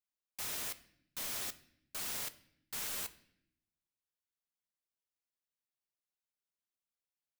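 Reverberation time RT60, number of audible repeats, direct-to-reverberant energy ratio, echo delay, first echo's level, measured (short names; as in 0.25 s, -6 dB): 0.75 s, none, 11.0 dB, none, none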